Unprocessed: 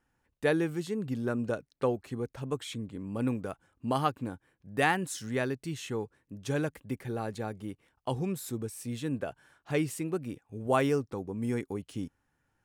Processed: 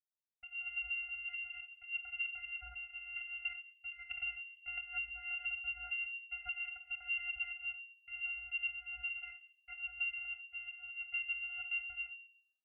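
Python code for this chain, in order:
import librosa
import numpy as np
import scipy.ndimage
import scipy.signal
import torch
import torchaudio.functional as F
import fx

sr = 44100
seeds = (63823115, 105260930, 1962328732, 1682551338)

y = fx.delta_hold(x, sr, step_db=-44.0)
y = fx.low_shelf(y, sr, hz=460.0, db=-11.0)
y = fx.over_compress(y, sr, threshold_db=-40.0, ratio=-0.5)
y = 10.0 ** (-35.5 / 20.0) * np.tanh(y / 10.0 ** (-35.5 / 20.0))
y = fx.vocoder(y, sr, bands=8, carrier='square', carrier_hz=338.0)
y = fx.room_shoebox(y, sr, seeds[0], volume_m3=540.0, walls='furnished', distance_m=1.1)
y = fx.freq_invert(y, sr, carrier_hz=3100)
y = fx.band_squash(y, sr, depth_pct=100, at=(4.11, 6.66))
y = y * 10.0 ** (3.0 / 20.0)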